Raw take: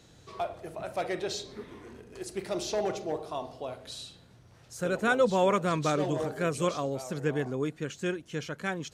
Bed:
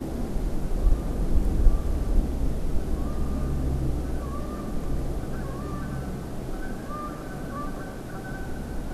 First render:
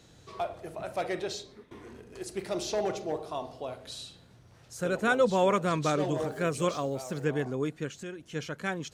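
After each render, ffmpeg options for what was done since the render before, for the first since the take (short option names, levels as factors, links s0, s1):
-filter_complex "[0:a]asettb=1/sr,asplit=3[s0][s1][s2];[s0]atrim=end=6.164[s3];[s1]atrim=start=6.16:end=7.25,asetpts=PTS-STARTPTS,afade=t=in:d=0.004:c=qsin,afade=t=out:st=1.086:d=0.004:c=qsin,aeval=exprs='val(0)*gte(abs(val(0)),0.00237)':c=same[s4];[s2]atrim=start=7.246[s5];[s3][s4]acrossfade=d=0.004:c1=hsin:c2=qsin[s6];[s6][s5]acrossfade=d=0.004:c1=qsin:c2=hsin,asplit=3[s7][s8][s9];[s7]afade=t=out:st=7.88:d=0.02[s10];[s8]acompressor=threshold=0.0112:ratio=3:attack=3.2:release=140:knee=1:detection=peak,afade=t=in:st=7.88:d=0.02,afade=t=out:st=8.34:d=0.02[s11];[s9]afade=t=in:st=8.34:d=0.02[s12];[s10][s11][s12]amix=inputs=3:normalize=0,asplit=2[s13][s14];[s13]atrim=end=1.71,asetpts=PTS-STARTPTS,afade=t=out:st=1.19:d=0.52:silence=0.16788[s15];[s14]atrim=start=1.71,asetpts=PTS-STARTPTS,afade=t=in:d=0.004:c=hsin:silence=0.16788[s16];[s15][s16]concat=n=2:v=0:a=1"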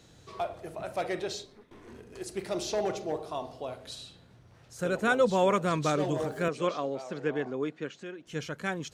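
-filter_complex "[0:a]asettb=1/sr,asplit=3[s0][s1][s2];[s0]atrim=end=1.454[s3];[s1]atrim=start=1.45:end=1.88,asetpts=PTS-STARTPTS,afade=t=in:d=0.004:c=qsin,afade=t=out:st=0.426:d=0.004:c=qsin,aeval=exprs='(tanh(224*val(0)+0.55)-tanh(0.55))/224':c=same[s4];[s2]atrim=start=1.876[s5];[s3][s4]acrossfade=d=0.004:c1=hsin:c2=qsin[s6];[s6][s5]acrossfade=d=0.004:c1=qsin:c2=hsin,asettb=1/sr,asplit=3[s7][s8][s9];[s7]atrim=end=3.954[s10];[s8]atrim=start=3.95:end=4.79,asetpts=PTS-STARTPTS,afade=t=in:d=0.004:c=qsin,afade=t=out:st=0.836:d=0.004:c=qsin,bass=f=250:g=0,treble=f=4000:g=-5[s11];[s9]atrim=start=4.786[s12];[s10][s11]acrossfade=d=0.004:c1=hsin:c2=qsin[s13];[s13][s12]acrossfade=d=0.004:c1=qsin:c2=hsin,asettb=1/sr,asplit=3[s14][s15][s16];[s14]atrim=end=6.484[s17];[s15]atrim=start=6.48:end=8.27,asetpts=PTS-STARTPTS,afade=t=in:d=0.004:c=qsin,afade=t=out:st=1.786:d=0.004:c=qsin,highpass=220,lowpass=4200[s18];[s16]atrim=start=8.266[s19];[s17][s18]acrossfade=d=0.004:c1=hsin:c2=qsin[s20];[s20][s19]acrossfade=d=0.004:c1=qsin:c2=hsin"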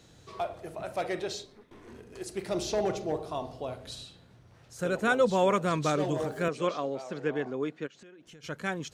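-filter_complex "[0:a]asettb=1/sr,asplit=3[s0][s1][s2];[s0]atrim=end=2.484[s3];[s1]atrim=start=2.48:end=4.04,asetpts=PTS-STARTPTS,afade=t=in:d=0.004:c=qsin,afade=t=out:st=1.556:d=0.004:c=qsin,lowshelf=f=220:g=7[s4];[s2]atrim=start=4.036[s5];[s3][s4]acrossfade=d=0.004:c1=hsin:c2=qsin[s6];[s6][s5]acrossfade=d=0.004:c1=qsin:c2=hsin,asplit=3[s7][s8][s9];[s7]afade=t=out:st=7.86:d=0.02[s10];[s8]acompressor=threshold=0.00398:ratio=16:attack=3.2:release=140:knee=1:detection=peak,afade=t=in:st=7.86:d=0.02,afade=t=out:st=8.43:d=0.02[s11];[s9]afade=t=in:st=8.43:d=0.02[s12];[s10][s11][s12]amix=inputs=3:normalize=0"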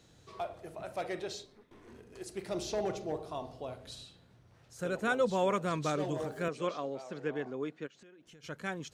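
-af "volume=0.562"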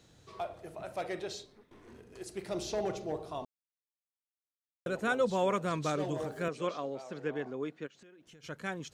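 -filter_complex "[0:a]asplit=3[s0][s1][s2];[s0]atrim=end=3.45,asetpts=PTS-STARTPTS,afade=t=out:st=3.446:d=0.004:c=hsin[s3];[s1]atrim=start=3.45:end=4.86,asetpts=PTS-STARTPTS,volume=0[s4];[s2]atrim=start=4.86,asetpts=PTS-STARTPTS,afade=t=in:d=0.004:c=hsin[s5];[s3][s4][s5]concat=n=3:v=0:a=1"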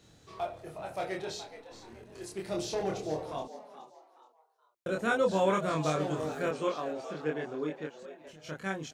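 -filter_complex "[0:a]asplit=2[s0][s1];[s1]adelay=26,volume=0.794[s2];[s0][s2]amix=inputs=2:normalize=0,asplit=4[s3][s4][s5][s6];[s4]adelay=423,afreqshift=110,volume=0.224[s7];[s5]adelay=846,afreqshift=220,volume=0.0716[s8];[s6]adelay=1269,afreqshift=330,volume=0.0229[s9];[s3][s7][s8][s9]amix=inputs=4:normalize=0"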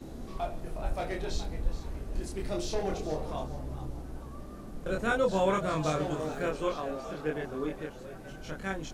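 -filter_complex "[1:a]volume=0.251[s0];[0:a][s0]amix=inputs=2:normalize=0"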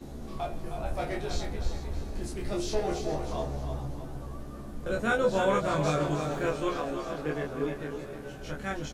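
-filter_complex "[0:a]asplit=2[s0][s1];[s1]adelay=14,volume=0.596[s2];[s0][s2]amix=inputs=2:normalize=0,aecho=1:1:313|626|939|1252|1565:0.398|0.159|0.0637|0.0255|0.0102"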